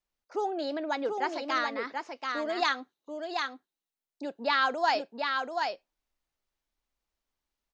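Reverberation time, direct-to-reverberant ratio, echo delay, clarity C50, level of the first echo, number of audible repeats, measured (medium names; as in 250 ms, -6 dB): no reverb, no reverb, 735 ms, no reverb, -4.5 dB, 1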